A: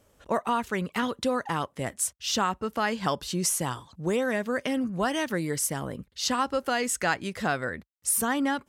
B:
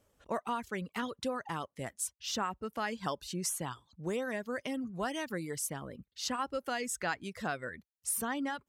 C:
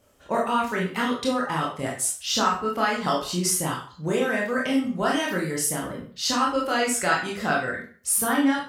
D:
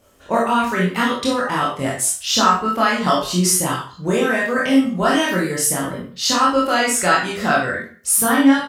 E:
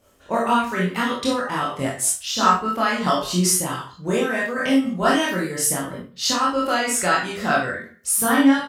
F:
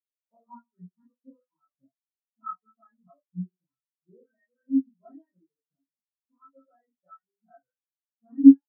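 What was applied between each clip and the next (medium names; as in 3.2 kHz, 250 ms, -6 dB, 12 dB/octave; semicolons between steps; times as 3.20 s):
reverb removal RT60 0.54 s; trim -8 dB
reverberation RT60 0.45 s, pre-delay 19 ms, DRR -3.5 dB; trim +7 dB
doubling 22 ms -2.5 dB; trim +5 dB
random flutter of the level, depth 65%
distance through air 300 m; spectral contrast expander 4:1; trim +3 dB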